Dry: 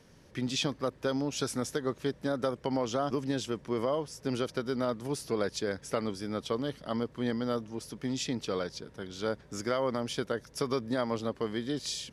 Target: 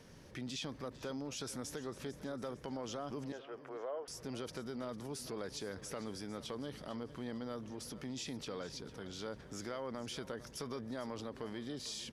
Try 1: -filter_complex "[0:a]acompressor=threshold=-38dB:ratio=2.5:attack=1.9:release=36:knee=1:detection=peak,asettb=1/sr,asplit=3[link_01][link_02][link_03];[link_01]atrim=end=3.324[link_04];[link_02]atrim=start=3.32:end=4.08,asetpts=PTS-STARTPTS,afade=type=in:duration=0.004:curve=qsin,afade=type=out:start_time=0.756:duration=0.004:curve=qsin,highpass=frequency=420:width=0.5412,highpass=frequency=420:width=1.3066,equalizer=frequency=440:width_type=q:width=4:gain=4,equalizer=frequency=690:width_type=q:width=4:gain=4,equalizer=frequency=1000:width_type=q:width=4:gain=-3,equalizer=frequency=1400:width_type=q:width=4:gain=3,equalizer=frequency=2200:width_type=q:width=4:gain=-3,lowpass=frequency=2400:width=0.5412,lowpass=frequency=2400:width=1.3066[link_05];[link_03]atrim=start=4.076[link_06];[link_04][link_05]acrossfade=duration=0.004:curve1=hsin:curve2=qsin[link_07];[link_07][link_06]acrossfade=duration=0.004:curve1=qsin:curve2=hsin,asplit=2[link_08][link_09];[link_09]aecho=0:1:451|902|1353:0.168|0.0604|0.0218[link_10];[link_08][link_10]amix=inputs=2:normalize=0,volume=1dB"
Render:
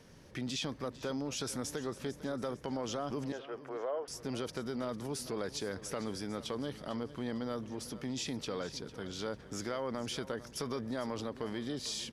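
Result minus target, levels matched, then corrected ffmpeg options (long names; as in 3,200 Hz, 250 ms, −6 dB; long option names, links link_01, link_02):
downward compressor: peak gain reduction −5 dB
-filter_complex "[0:a]acompressor=threshold=-46.5dB:ratio=2.5:attack=1.9:release=36:knee=1:detection=peak,asettb=1/sr,asplit=3[link_01][link_02][link_03];[link_01]atrim=end=3.324[link_04];[link_02]atrim=start=3.32:end=4.08,asetpts=PTS-STARTPTS,afade=type=in:duration=0.004:curve=qsin,afade=type=out:start_time=0.756:duration=0.004:curve=qsin,highpass=frequency=420:width=0.5412,highpass=frequency=420:width=1.3066,equalizer=frequency=440:width_type=q:width=4:gain=4,equalizer=frequency=690:width_type=q:width=4:gain=4,equalizer=frequency=1000:width_type=q:width=4:gain=-3,equalizer=frequency=1400:width_type=q:width=4:gain=3,equalizer=frequency=2200:width_type=q:width=4:gain=-3,lowpass=frequency=2400:width=0.5412,lowpass=frequency=2400:width=1.3066[link_05];[link_03]atrim=start=4.076[link_06];[link_04][link_05]acrossfade=duration=0.004:curve1=hsin:curve2=qsin[link_07];[link_07][link_06]acrossfade=duration=0.004:curve1=qsin:curve2=hsin,asplit=2[link_08][link_09];[link_09]aecho=0:1:451|902|1353:0.168|0.0604|0.0218[link_10];[link_08][link_10]amix=inputs=2:normalize=0,volume=1dB"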